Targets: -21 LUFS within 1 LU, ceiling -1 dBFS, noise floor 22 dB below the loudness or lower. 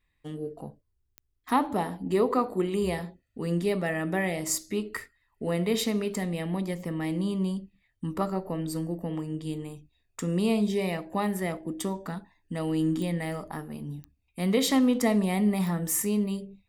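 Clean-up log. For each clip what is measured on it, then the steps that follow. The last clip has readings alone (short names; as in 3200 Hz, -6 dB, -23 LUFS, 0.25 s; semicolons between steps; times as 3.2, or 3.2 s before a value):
clicks 5; loudness -29.0 LUFS; peak -12.5 dBFS; loudness target -21.0 LUFS
-> de-click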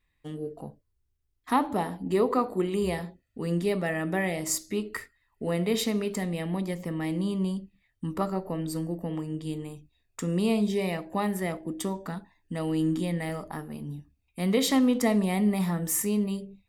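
clicks 0; loudness -29.0 LUFS; peak -12.5 dBFS; loudness target -21.0 LUFS
-> gain +8 dB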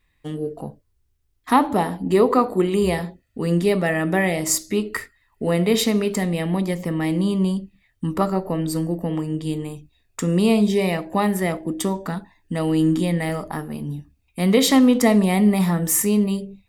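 loudness -21.0 LUFS; peak -4.5 dBFS; noise floor -66 dBFS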